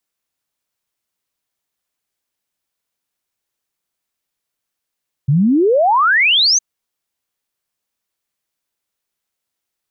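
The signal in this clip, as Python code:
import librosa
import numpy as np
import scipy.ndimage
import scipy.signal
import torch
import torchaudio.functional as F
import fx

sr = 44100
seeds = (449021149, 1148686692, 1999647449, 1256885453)

y = fx.ess(sr, length_s=1.31, from_hz=130.0, to_hz=6500.0, level_db=-9.5)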